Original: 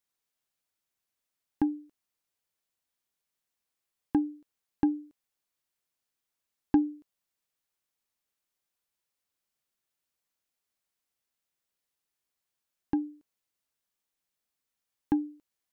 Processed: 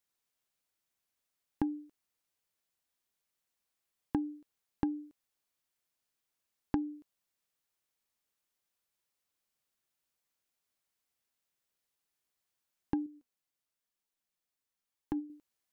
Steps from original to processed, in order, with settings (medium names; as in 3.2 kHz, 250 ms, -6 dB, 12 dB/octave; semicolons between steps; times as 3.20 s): compression 10:1, threshold -28 dBFS, peak gain reduction 10.5 dB; 13.06–15.30 s: flange 1 Hz, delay 2.1 ms, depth 5.7 ms, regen +62%